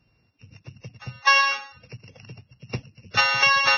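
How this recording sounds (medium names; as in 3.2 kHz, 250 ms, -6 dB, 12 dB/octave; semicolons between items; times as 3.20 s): a buzz of ramps at a fixed pitch in blocks of 16 samples; Vorbis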